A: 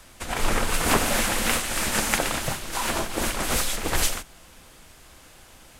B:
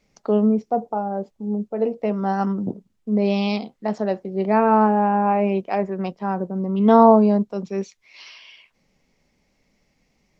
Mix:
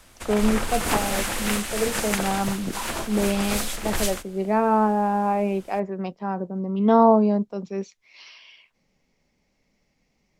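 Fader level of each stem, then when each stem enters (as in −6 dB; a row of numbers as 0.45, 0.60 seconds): −3.0, −3.5 decibels; 0.00, 0.00 seconds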